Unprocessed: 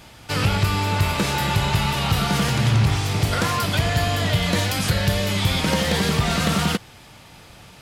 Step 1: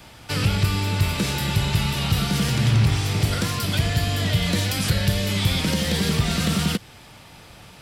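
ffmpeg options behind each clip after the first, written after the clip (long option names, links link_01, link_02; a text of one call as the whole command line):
ffmpeg -i in.wav -filter_complex "[0:a]acrossover=split=350|3000[link_01][link_02][link_03];[link_02]acompressor=threshold=-27dB:ratio=6[link_04];[link_01][link_04][link_03]amix=inputs=3:normalize=0,bandreject=frequency=6600:width=21,acrossover=split=660|1200[link_05][link_06][link_07];[link_06]acompressor=threshold=-45dB:ratio=6[link_08];[link_05][link_08][link_07]amix=inputs=3:normalize=0" out.wav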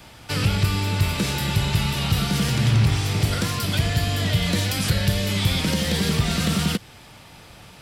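ffmpeg -i in.wav -af anull out.wav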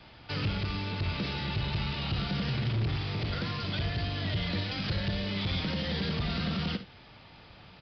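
ffmpeg -i in.wav -af "aresample=11025,asoftclip=type=tanh:threshold=-18.5dB,aresample=44100,aecho=1:1:55|76:0.237|0.141,volume=-7dB" out.wav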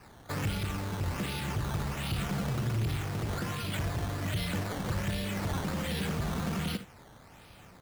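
ffmpeg -i in.wav -af "acrusher=samples=12:mix=1:aa=0.000001:lfo=1:lforange=12:lforate=1.3,volume=-1dB" out.wav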